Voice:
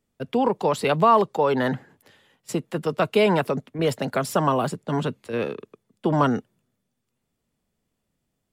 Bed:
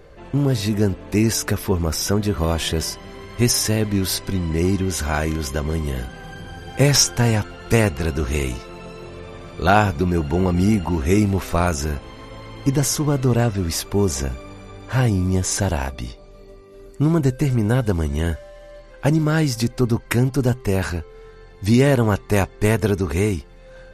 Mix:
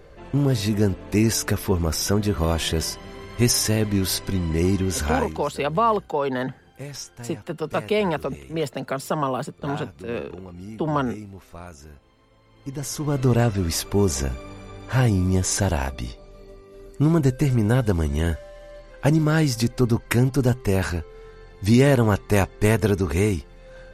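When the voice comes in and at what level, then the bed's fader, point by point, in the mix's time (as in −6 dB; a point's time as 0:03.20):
4.75 s, −3.0 dB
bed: 0:05.11 −1.5 dB
0:05.52 −20.5 dB
0:12.44 −20.5 dB
0:13.24 −1 dB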